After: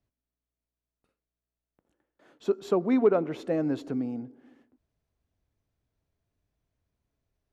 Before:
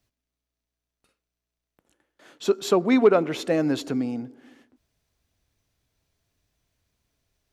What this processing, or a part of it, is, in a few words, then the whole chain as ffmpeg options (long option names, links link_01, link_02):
through cloth: -af "highshelf=frequency=1900:gain=-13.5,volume=-4dB"